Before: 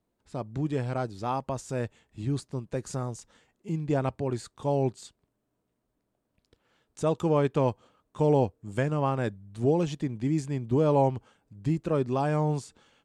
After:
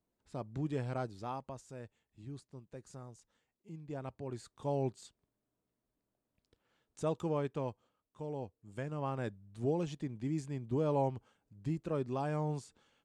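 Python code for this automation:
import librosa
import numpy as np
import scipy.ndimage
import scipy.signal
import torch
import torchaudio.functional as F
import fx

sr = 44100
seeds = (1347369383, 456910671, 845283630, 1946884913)

y = fx.gain(x, sr, db=fx.line((1.03, -7.0), (1.79, -17.0), (3.85, -17.0), (4.65, -8.0), (7.08, -8.0), (8.31, -19.0), (9.19, -9.0)))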